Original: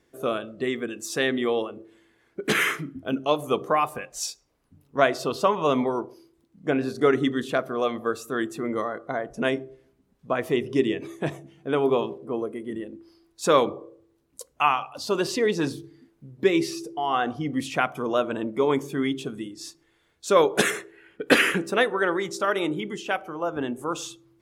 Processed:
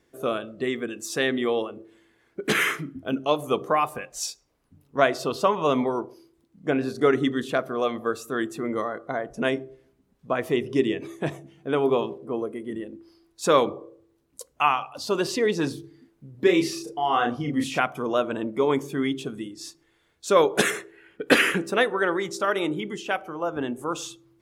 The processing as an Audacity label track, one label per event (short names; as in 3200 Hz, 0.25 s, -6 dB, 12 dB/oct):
16.310000	17.800000	doubler 34 ms -3 dB